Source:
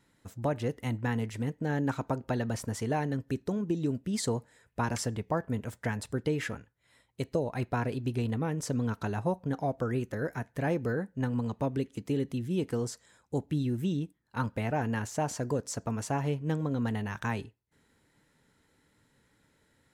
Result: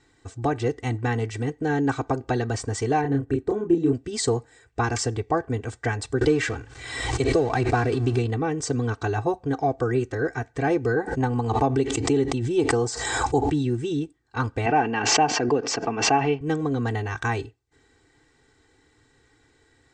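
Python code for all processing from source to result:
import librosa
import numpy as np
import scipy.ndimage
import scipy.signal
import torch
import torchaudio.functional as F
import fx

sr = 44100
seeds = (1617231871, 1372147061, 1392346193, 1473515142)

y = fx.chain(x, sr, fx.peak_eq(hz=5100.0, db=-14.5, octaves=1.7),
    fx.doubler(ms=29.0, db=-3.0), at=(3.01, 3.93))
y = fx.chain(y, sr, fx.law_mismatch(coded='mu'),
    fx.pre_swell(db_per_s=48.0), at=(6.21, 8.19))
y = fx.chain(y, sr, fx.peak_eq(hz=850.0, db=8.5, octaves=0.56),
    fx.pre_swell(db_per_s=34.0), at=(10.96, 13.66))
y = fx.chain(y, sr, fx.cabinet(low_hz=160.0, low_slope=24, high_hz=4800.0, hz=(190.0, 830.0, 2700.0, 3900.0), db=(8, 5, 8, -6)),
    fx.pre_swell(db_per_s=31.0), at=(14.66, 16.41))
y = scipy.signal.sosfilt(scipy.signal.ellip(4, 1.0, 40, 8300.0, 'lowpass', fs=sr, output='sos'), y)
y = fx.peak_eq(y, sr, hz=3000.0, db=-2.5, octaves=0.77)
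y = y + 0.9 * np.pad(y, (int(2.6 * sr / 1000.0), 0))[:len(y)]
y = y * librosa.db_to_amplitude(6.5)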